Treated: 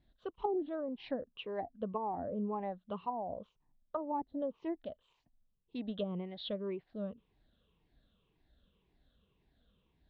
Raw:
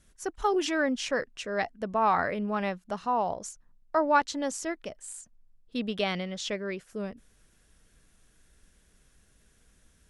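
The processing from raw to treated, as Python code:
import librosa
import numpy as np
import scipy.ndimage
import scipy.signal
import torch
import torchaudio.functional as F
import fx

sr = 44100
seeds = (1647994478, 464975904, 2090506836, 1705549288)

y = fx.spec_ripple(x, sr, per_octave=0.75, drift_hz=-1.9, depth_db=12)
y = scipy.signal.sosfilt(scipy.signal.cheby1(5, 1.0, 3900.0, 'lowpass', fs=sr, output='sos'), y)
y = fx.env_lowpass_down(y, sr, base_hz=510.0, full_db=-22.5)
y = fx.highpass(y, sr, hz=50.0, slope=6)
y = fx.band_shelf(y, sr, hz=1800.0, db=-9.5, octaves=1.1)
y = y * librosa.db_to_amplitude(-7.0)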